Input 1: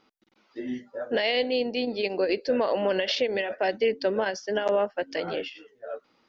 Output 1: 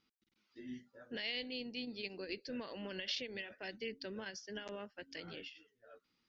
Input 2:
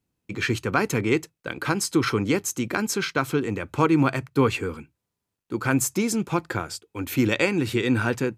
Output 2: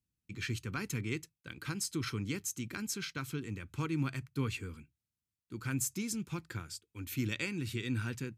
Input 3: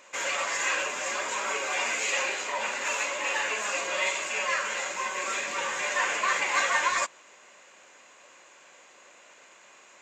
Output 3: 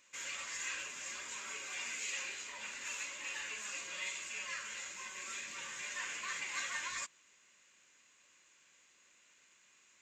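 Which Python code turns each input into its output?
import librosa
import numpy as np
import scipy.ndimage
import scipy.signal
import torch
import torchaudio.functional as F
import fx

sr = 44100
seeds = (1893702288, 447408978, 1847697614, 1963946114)

y = fx.tone_stack(x, sr, knobs='6-0-2')
y = y * librosa.db_to_amplitude(5.5)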